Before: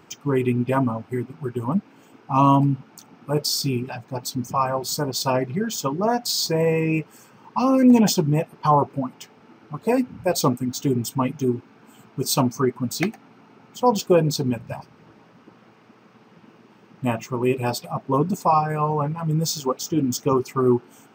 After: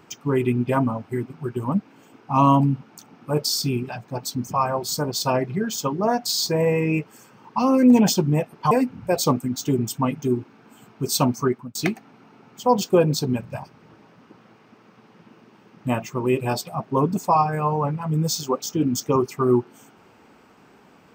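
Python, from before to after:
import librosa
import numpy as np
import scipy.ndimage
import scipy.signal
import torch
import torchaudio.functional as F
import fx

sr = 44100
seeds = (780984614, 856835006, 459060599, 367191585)

y = fx.edit(x, sr, fx.cut(start_s=8.71, length_s=1.17),
    fx.fade_out_span(start_s=12.64, length_s=0.28), tone=tone)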